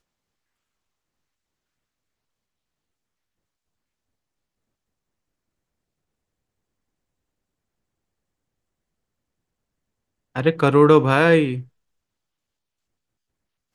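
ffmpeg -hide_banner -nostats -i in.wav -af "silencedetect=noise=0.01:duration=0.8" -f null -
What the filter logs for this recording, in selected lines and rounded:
silence_start: 0.00
silence_end: 10.35 | silence_duration: 10.35
silence_start: 11.63
silence_end: 13.74 | silence_duration: 2.11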